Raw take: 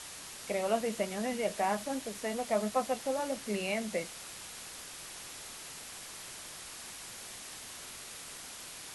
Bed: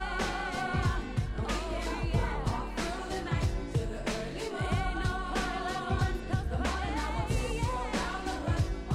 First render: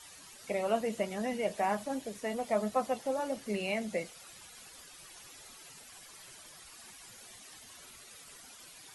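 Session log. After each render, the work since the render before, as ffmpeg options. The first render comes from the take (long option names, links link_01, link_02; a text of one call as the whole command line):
ffmpeg -i in.wav -af "afftdn=noise_reduction=12:noise_floor=-47" out.wav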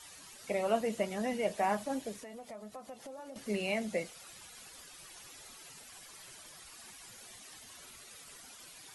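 ffmpeg -i in.wav -filter_complex "[0:a]asettb=1/sr,asplit=3[link_01][link_02][link_03];[link_01]atrim=end=2.154[link_04];[link_02]atrim=start=2.15:end=3.36,asetpts=PTS-STARTPTS,afade=type=in:duration=0.004:curve=qsin,afade=type=out:start_time=1.206:duration=0.004:curve=qsin,acompressor=threshold=-45dB:ratio=5:attack=3.2:release=140:knee=1:detection=peak[link_05];[link_03]atrim=start=3.356[link_06];[link_04][link_05]acrossfade=duration=0.004:curve1=hsin:curve2=qsin[link_07];[link_07][link_06]acrossfade=duration=0.004:curve1=qsin:curve2=hsin" out.wav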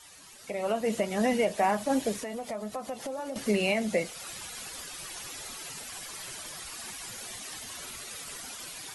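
ffmpeg -i in.wav -af "alimiter=level_in=2.5dB:limit=-24dB:level=0:latency=1:release=310,volume=-2.5dB,dynaudnorm=framelen=470:gausssize=3:maxgain=11dB" out.wav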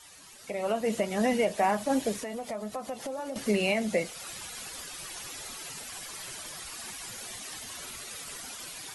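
ffmpeg -i in.wav -af anull out.wav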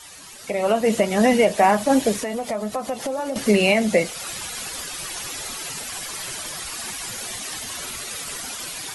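ffmpeg -i in.wav -af "volume=9.5dB" out.wav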